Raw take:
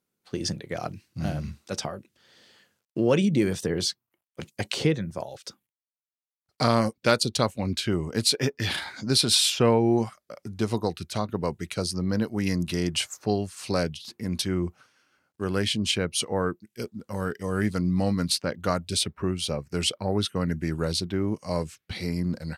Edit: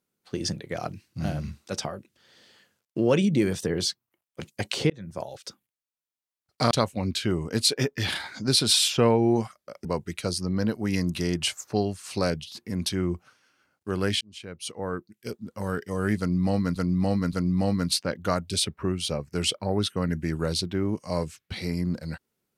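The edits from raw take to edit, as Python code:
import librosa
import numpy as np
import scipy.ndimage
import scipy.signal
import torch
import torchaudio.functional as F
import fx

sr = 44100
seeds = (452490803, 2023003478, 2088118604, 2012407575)

y = fx.edit(x, sr, fx.fade_in_span(start_s=4.9, length_s=0.31),
    fx.cut(start_s=6.71, length_s=0.62),
    fx.cut(start_s=10.47, length_s=0.91),
    fx.fade_in_span(start_s=15.74, length_s=1.22),
    fx.repeat(start_s=17.72, length_s=0.57, count=3), tone=tone)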